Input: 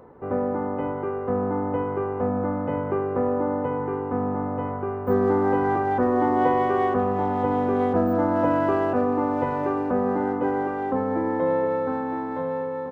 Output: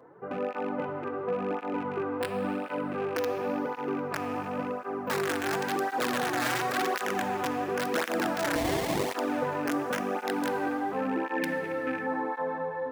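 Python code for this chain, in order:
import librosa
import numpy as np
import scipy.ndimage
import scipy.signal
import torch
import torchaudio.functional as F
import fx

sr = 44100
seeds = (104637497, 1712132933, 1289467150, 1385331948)

p1 = fx.rattle_buzz(x, sr, strikes_db=-30.0, level_db=-30.0)
p2 = (np.mod(10.0 ** (13.5 / 20.0) * p1 + 1.0, 2.0) - 1.0) / 10.0 ** (13.5 / 20.0)
p3 = fx.peak_eq(p2, sr, hz=1600.0, db=6.5, octaves=0.49)
p4 = fx.over_compress(p3, sr, threshold_db=-25.0, ratio=-1.0)
p5 = p3 + (p4 * 10.0 ** (-2.0 / 20.0))
p6 = scipy.signal.sosfilt(scipy.signal.butter(4, 130.0, 'highpass', fs=sr, output='sos'), p5)
p7 = fx.hum_notches(p6, sr, base_hz=50, count=5)
p8 = fx.rev_plate(p7, sr, seeds[0], rt60_s=4.6, hf_ratio=0.6, predelay_ms=0, drr_db=6.5)
p9 = fx.sample_hold(p8, sr, seeds[1], rate_hz=1400.0, jitter_pct=20, at=(8.55, 9.13))
p10 = fx.graphic_eq_10(p9, sr, hz=(250, 500, 1000, 2000), db=(4, -4, -9, 9), at=(11.37, 12.07))
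p11 = fx.flanger_cancel(p10, sr, hz=0.93, depth_ms=5.5)
y = p11 * 10.0 ** (-8.5 / 20.0)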